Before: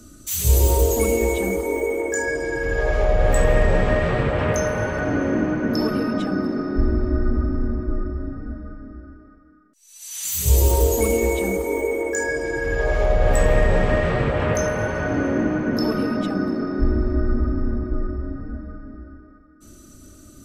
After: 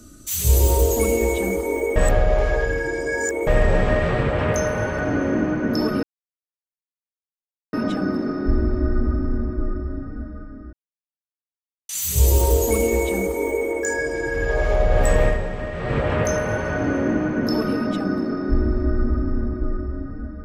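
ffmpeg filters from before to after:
ffmpeg -i in.wav -filter_complex "[0:a]asplit=8[link_01][link_02][link_03][link_04][link_05][link_06][link_07][link_08];[link_01]atrim=end=1.962[link_09];[link_02]atrim=start=1.958:end=3.472,asetpts=PTS-STARTPTS,areverse[link_10];[link_03]atrim=start=3.468:end=6.03,asetpts=PTS-STARTPTS,afade=type=out:start_time=2.558:duration=0.004:curve=hsin,apad=pad_dur=1.7[link_11];[link_04]atrim=start=6.03:end=9.03,asetpts=PTS-STARTPTS,afade=type=in:duration=0.004:curve=hsin,afade=type=out:start_time=2.996:duration=0.004:curve=hsin[link_12];[link_05]atrim=start=9.03:end=10.19,asetpts=PTS-STARTPTS,volume=0[link_13];[link_06]atrim=start=10.19:end=13.81,asetpts=PTS-STARTPTS,afade=type=in:duration=0.004:curve=hsin,afade=type=out:start_time=3.36:duration=0.26:curve=qua:silence=0.334965[link_14];[link_07]atrim=start=13.81:end=14,asetpts=PTS-STARTPTS,volume=-9.5dB[link_15];[link_08]atrim=start=14,asetpts=PTS-STARTPTS,afade=type=in:duration=0.26:curve=qua:silence=0.334965[link_16];[link_09][link_10]acrossfade=duration=0.004:curve1=hsin:curve2=hsin[link_17];[link_11][link_12][link_13][link_14][link_15][link_16]concat=n=6:v=0:a=1[link_18];[link_17][link_18]acrossfade=duration=0.004:curve1=hsin:curve2=hsin" out.wav

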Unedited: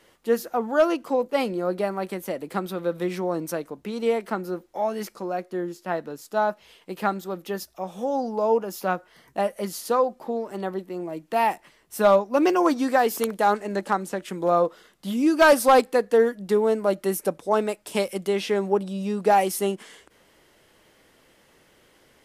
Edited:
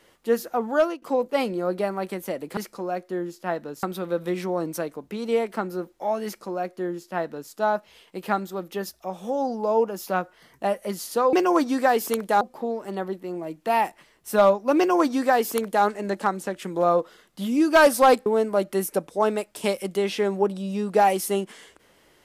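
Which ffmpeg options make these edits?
ffmpeg -i in.wav -filter_complex "[0:a]asplit=7[link_01][link_02][link_03][link_04][link_05][link_06][link_07];[link_01]atrim=end=1.02,asetpts=PTS-STARTPTS,afade=type=out:start_time=0.77:duration=0.25:silence=0.105925[link_08];[link_02]atrim=start=1.02:end=2.572,asetpts=PTS-STARTPTS,afade=type=in:duration=0.004:curve=hsin:silence=0.105925[link_09];[link_03]atrim=start=4.988:end=6.252[link_10];[link_04]atrim=start=2.568:end=10.072[link_11];[link_05]atrim=start=12.428:end=13.512[link_12];[link_06]atrim=start=10.068:end=15.922[link_13];[link_07]atrim=start=16.568[link_14];[link_08][link_09]concat=n=2:v=0:a=1[link_15];[link_15][link_10]acrossfade=duration=0.004:curve1=hsin:curve2=hsin[link_16];[link_16][link_11]acrossfade=duration=0.004:curve1=hsin:curve2=hsin[link_17];[link_17][link_12]acrossfade=duration=0.004:curve1=hsin:curve2=hsin[link_18];[link_18][link_13]acrossfade=duration=0.004:curve1=hsin:curve2=hsin[link_19];[link_19][link_14]acrossfade=duration=0.004:curve1=hsin:curve2=hsin" out.wav

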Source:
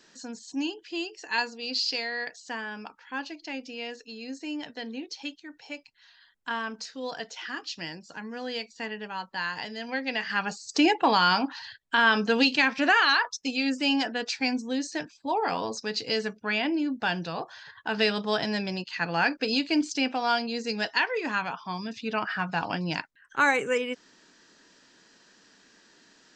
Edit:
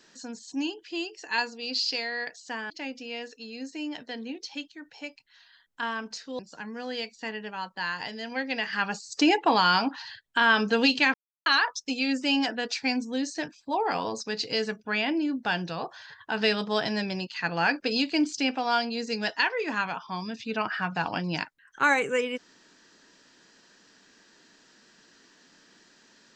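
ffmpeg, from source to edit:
ffmpeg -i in.wav -filter_complex "[0:a]asplit=5[link_01][link_02][link_03][link_04][link_05];[link_01]atrim=end=2.702[link_06];[link_02]atrim=start=3.378:end=7.072[link_07];[link_03]atrim=start=7.958:end=12.71,asetpts=PTS-STARTPTS,afade=type=out:start_time=4.748:duration=0.004:curve=hsin[link_08];[link_04]atrim=start=12.71:end=13.03,asetpts=PTS-STARTPTS,volume=0[link_09];[link_05]atrim=start=13.03,asetpts=PTS-STARTPTS,afade=type=in:duration=0.004:curve=hsin[link_10];[link_06][link_07]acrossfade=duration=0.004:curve1=hsin:curve2=hsin[link_11];[link_08][link_09][link_10]concat=n=3:v=0:a=1[link_12];[link_11][link_12]acrossfade=duration=0.004:curve1=hsin:curve2=hsin" out.wav

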